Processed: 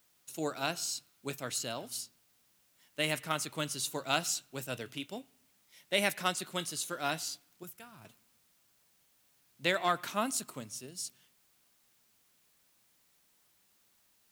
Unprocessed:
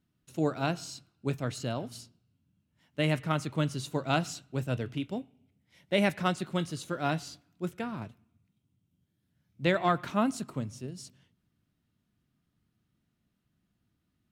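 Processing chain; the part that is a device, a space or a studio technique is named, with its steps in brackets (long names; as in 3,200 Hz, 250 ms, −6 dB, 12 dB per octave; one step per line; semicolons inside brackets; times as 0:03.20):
0:07.63–0:08.05: octave-band graphic EQ 250/500/1,000/2,000/4,000/8,000 Hz −11/−11/−7/−9/−9/−6 dB
turntable without a phono preamp (RIAA equalisation recording; white noise bed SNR 32 dB)
level −2.5 dB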